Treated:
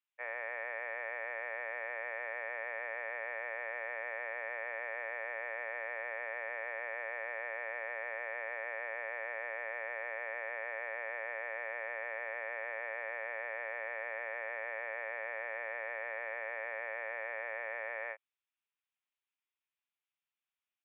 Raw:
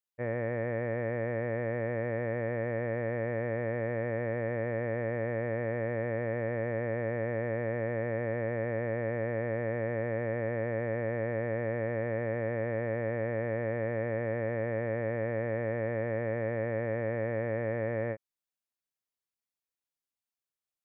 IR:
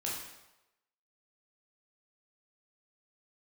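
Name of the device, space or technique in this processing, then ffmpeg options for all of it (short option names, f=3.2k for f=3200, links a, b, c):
musical greeting card: -af "aresample=8000,aresample=44100,highpass=f=790:w=0.5412,highpass=f=790:w=1.3066,equalizer=f=2.5k:t=o:w=0.45:g=6,volume=1dB"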